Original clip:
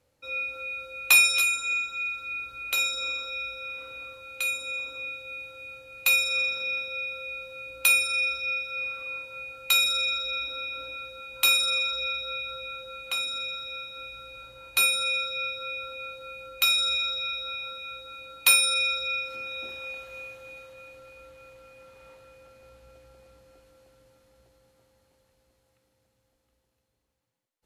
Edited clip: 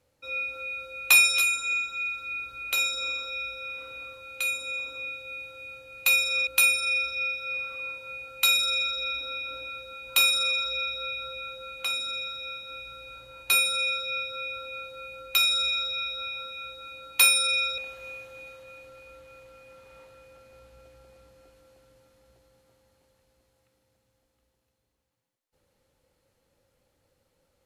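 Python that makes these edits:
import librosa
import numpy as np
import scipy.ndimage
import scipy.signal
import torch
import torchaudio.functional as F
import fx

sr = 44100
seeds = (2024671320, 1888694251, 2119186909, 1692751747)

y = fx.edit(x, sr, fx.cut(start_s=6.47, length_s=1.27),
    fx.cut(start_s=19.05, length_s=0.83), tone=tone)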